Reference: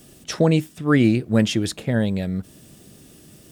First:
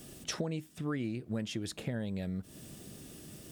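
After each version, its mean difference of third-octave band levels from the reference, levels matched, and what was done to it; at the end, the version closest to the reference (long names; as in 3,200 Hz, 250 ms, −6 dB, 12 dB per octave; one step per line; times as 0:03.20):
8.0 dB: downward compressor 6 to 1, threshold −32 dBFS, peak gain reduction 18.5 dB
level −2 dB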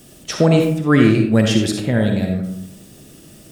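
4.0 dB: comb and all-pass reverb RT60 0.75 s, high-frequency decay 0.45×, pre-delay 20 ms, DRR 2.5 dB
level +3 dB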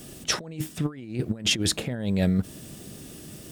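10.5 dB: compressor whose output falls as the input rises −25 dBFS, ratio −0.5
level −1 dB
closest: second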